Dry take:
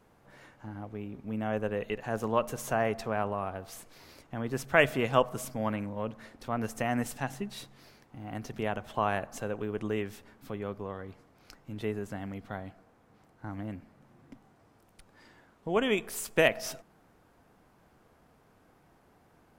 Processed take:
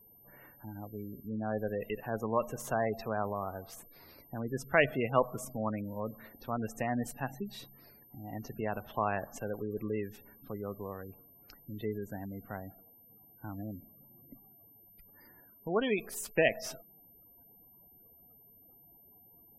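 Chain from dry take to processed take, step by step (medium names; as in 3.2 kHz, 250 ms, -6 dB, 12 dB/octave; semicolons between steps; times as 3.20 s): whistle 13 kHz -55 dBFS; spectral gate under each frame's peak -20 dB strong; trim -2.5 dB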